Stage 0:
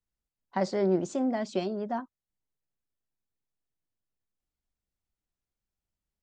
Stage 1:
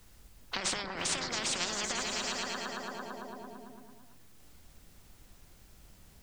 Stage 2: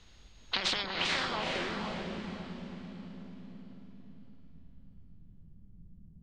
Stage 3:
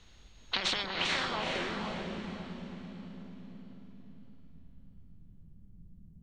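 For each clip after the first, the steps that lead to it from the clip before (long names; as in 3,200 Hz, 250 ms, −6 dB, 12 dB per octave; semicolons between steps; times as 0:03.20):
compressor whose output falls as the input rises −34 dBFS, ratio −1; echo whose low-pass opens from repeat to repeat 112 ms, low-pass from 200 Hz, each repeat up 1 octave, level −3 dB; every bin compressed towards the loudest bin 10 to 1; level +3 dB
steady tone 6,600 Hz −63 dBFS; low-pass filter sweep 3,800 Hz → 180 Hz, 0:00.97–0:01.90; feedback delay with all-pass diffusion 462 ms, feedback 40%, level −3.5 dB
notch filter 4,900 Hz, Q 14; on a send at −23.5 dB: convolution reverb RT60 0.50 s, pre-delay 118 ms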